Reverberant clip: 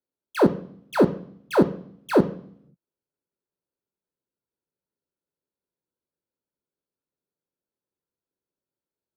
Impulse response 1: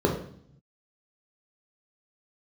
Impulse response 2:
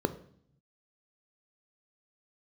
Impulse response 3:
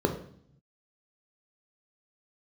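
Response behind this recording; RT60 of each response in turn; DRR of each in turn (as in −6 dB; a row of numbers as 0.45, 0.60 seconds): 2; 0.60, 0.60, 0.60 seconds; −1.5, 9.5, 2.5 decibels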